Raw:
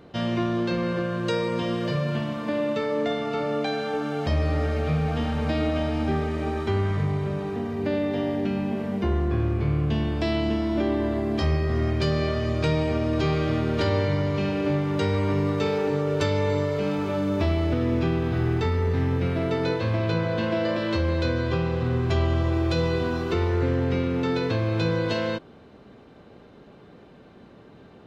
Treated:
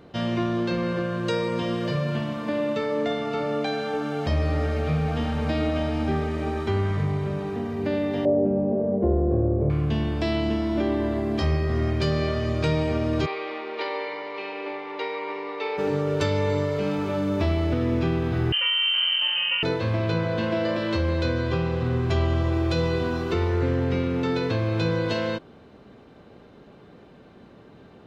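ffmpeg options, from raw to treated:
ffmpeg -i in.wav -filter_complex "[0:a]asettb=1/sr,asplit=3[link_01][link_02][link_03];[link_01]atrim=end=8.254[link_04];[link_02]atrim=start=8.25:end=9.7,asetpts=PTS-STARTPTS,afade=type=in:duration=0.004:curve=qsin,afade=type=out:start_time=1.446:duration=0.004:curve=qsin,lowpass=frequency=550:width_type=q:width=4.1[link_05];[link_03]atrim=start=9.696[link_06];[link_04][link_05]acrossfade=duration=0.004:curve1=hsin:curve2=qsin[link_07];[link_07][link_06]acrossfade=duration=0.004:curve1=qsin:curve2=hsin,asplit=3[link_08][link_09][link_10];[link_08]afade=type=out:start_time=13.25:duration=0.02[link_11];[link_09]highpass=frequency=430:width=0.5412,highpass=frequency=430:width=1.3066,equalizer=frequency=610:width_type=q:width=4:gain=-8,equalizer=frequency=880:width_type=q:width=4:gain=4,equalizer=frequency=1500:width_type=q:width=4:gain=-8,equalizer=frequency=2200:width_type=q:width=4:gain=5,equalizer=frequency=3200:width_type=q:width=4:gain=-4,lowpass=frequency=4100:width=0.5412,lowpass=frequency=4100:width=1.3066,afade=type=in:start_time=13.25:duration=0.02,afade=type=out:start_time=15.77:duration=0.02[link_12];[link_10]afade=type=in:start_time=15.77:duration=0.02[link_13];[link_11][link_12][link_13]amix=inputs=3:normalize=0,asettb=1/sr,asplit=3[link_14][link_15][link_16];[link_14]atrim=end=18.524[link_17];[link_15]atrim=start=18.52:end=19.63,asetpts=PTS-STARTPTS,afade=type=in:duration=0.004:curve=qsin,afade=type=out:start_time=1.106:duration=0.004:curve=qsin,lowpass=frequency=2700:width_type=q:width=0.5098,lowpass=frequency=2700:width_type=q:width=0.6013,lowpass=frequency=2700:width_type=q:width=0.9,lowpass=frequency=2700:width_type=q:width=2.563,afreqshift=-3200[link_18];[link_16]atrim=start=19.626[link_19];[link_17][link_18]acrossfade=duration=0.004:curve1=hsin:curve2=qsin[link_20];[link_20][link_19]acrossfade=duration=0.004:curve1=qsin:curve2=hsin" out.wav

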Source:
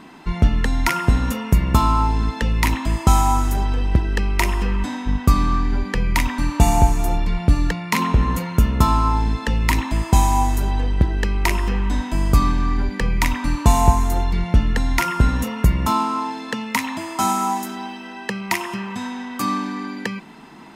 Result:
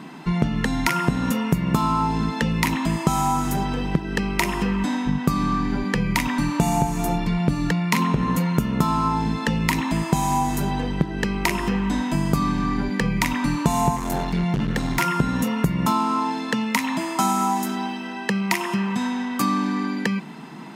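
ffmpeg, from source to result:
ffmpeg -i in.wav -filter_complex "[0:a]asettb=1/sr,asplit=3[link_01][link_02][link_03];[link_01]atrim=end=13.964[link_04];[link_02]atrim=start=13.96:end=15.01,asetpts=PTS-STARTPTS,afade=type=in:duration=0.004:curve=qsin,afade=type=out:start_time=1.046:duration=0.004:curve=qsin,asoftclip=type=hard:threshold=-17dB[link_05];[link_03]atrim=start=15.006[link_06];[link_04][link_05]acrossfade=duration=0.004:curve1=hsin:curve2=qsin[link_07];[link_07][link_06]acrossfade=duration=0.004:curve1=qsin:curve2=hsin,lowshelf=frequency=110:width_type=q:width=3:gain=-10.5,acompressor=threshold=-20dB:ratio=3,volume=2dB" out.wav

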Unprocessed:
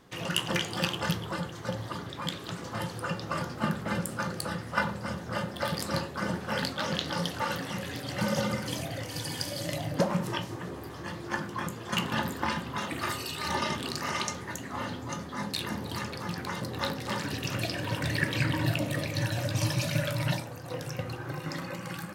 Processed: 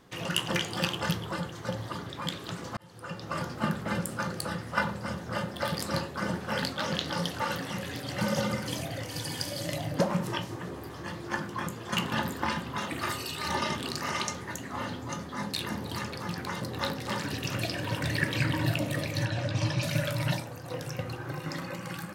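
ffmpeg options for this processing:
ffmpeg -i in.wav -filter_complex "[0:a]asettb=1/sr,asplit=3[link_01][link_02][link_03];[link_01]atrim=end=19.254[link_04];[link_02]atrim=start=19.25:end=19.83,asetpts=PTS-STARTPTS,afade=type=in:duration=0.004:curve=qsin,afade=type=out:start_time=0.576:duration=0.004:curve=qsin,lowpass=4800[link_05];[link_03]atrim=start=19.826[link_06];[link_04][link_05]acrossfade=duration=0.004:curve1=hsin:curve2=qsin[link_07];[link_07][link_06]acrossfade=duration=0.004:curve1=qsin:curve2=hsin,asplit=2[link_08][link_09];[link_08]atrim=end=2.77,asetpts=PTS-STARTPTS,afade=type=out:start_time=2.766:duration=0.004:curve=hsin[link_10];[link_09]atrim=start=2.77,asetpts=PTS-STARTPTS,afade=type=in:duration=0.67[link_11];[link_10][link_11]concat=n=2:v=0:a=1" out.wav

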